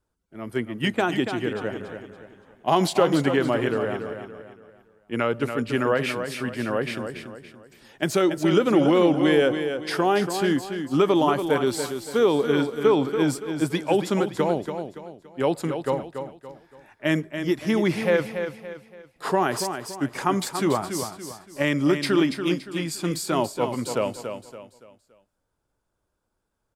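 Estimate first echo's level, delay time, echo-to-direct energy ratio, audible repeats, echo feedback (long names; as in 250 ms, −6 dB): −8.0 dB, 284 ms, −7.5 dB, 4, 37%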